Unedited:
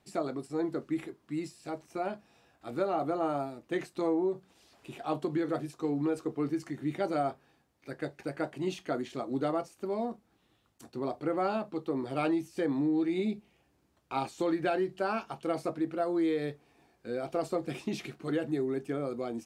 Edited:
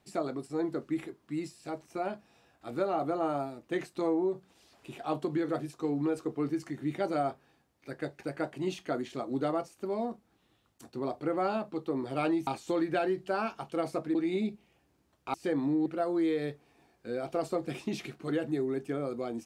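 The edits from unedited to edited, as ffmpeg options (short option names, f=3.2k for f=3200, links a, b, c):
-filter_complex "[0:a]asplit=5[a][b][c][d][e];[a]atrim=end=12.472[f];[b]atrim=start=14.178:end=15.862[g];[c]atrim=start=12.988:end=14.182[h];[d]atrim=start=12.468:end=12.992[i];[e]atrim=start=15.858[j];[f][g]acrossfade=d=0.004:c1=hsin:c2=hsin[k];[k][h]acrossfade=d=0.004:c1=hsin:c2=hsin[l];[l][i]acrossfade=d=0.004:c1=hsin:c2=hsin[m];[m][j]acrossfade=d=0.004:c1=hsin:c2=hsin"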